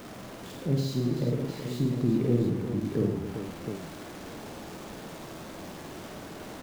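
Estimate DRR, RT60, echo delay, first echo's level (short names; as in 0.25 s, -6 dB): none, none, 50 ms, -3.5 dB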